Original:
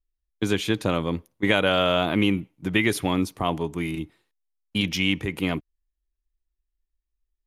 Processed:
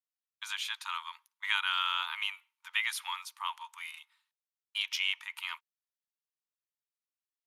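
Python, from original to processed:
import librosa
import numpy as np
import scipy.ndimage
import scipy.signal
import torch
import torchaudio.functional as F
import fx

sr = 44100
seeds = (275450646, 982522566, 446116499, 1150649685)

y = scipy.signal.sosfilt(scipy.signal.cheby1(6, 3, 890.0, 'highpass', fs=sr, output='sos'), x)
y = y * librosa.db_to_amplitude(-4.5)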